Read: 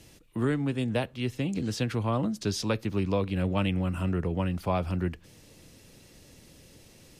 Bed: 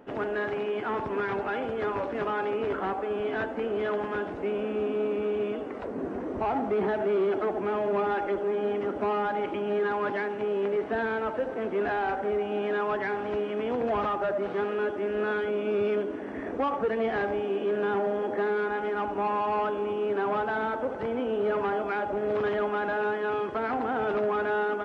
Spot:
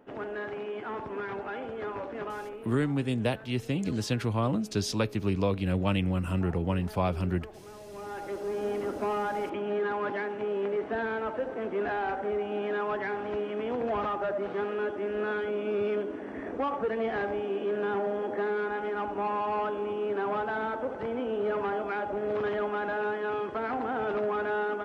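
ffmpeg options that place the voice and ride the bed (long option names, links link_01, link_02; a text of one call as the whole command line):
ffmpeg -i stem1.wav -i stem2.wav -filter_complex "[0:a]adelay=2300,volume=0dB[link_01];[1:a]volume=10.5dB,afade=type=out:start_time=2.22:duration=0.5:silence=0.223872,afade=type=in:start_time=7.91:duration=0.81:silence=0.149624[link_02];[link_01][link_02]amix=inputs=2:normalize=0" out.wav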